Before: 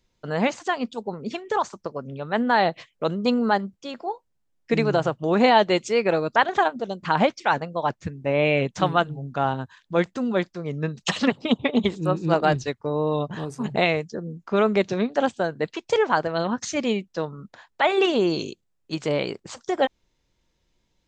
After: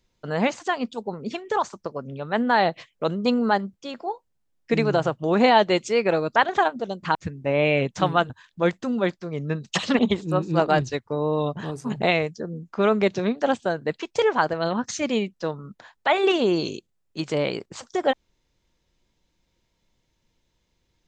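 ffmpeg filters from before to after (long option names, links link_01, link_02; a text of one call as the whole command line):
ffmpeg -i in.wav -filter_complex "[0:a]asplit=4[link_01][link_02][link_03][link_04];[link_01]atrim=end=7.152[link_05];[link_02]atrim=start=7.948:end=9.102[link_06];[link_03]atrim=start=9.628:end=11.322[link_07];[link_04]atrim=start=11.728[link_08];[link_05][link_06]acrossfade=duration=0.004:curve1=hsin:curve2=hsin[link_09];[link_09][link_07]acrossfade=duration=0.004:curve1=hsin:curve2=hsin[link_10];[link_10][link_08]acrossfade=duration=0.004:curve1=hsin:curve2=hsin" out.wav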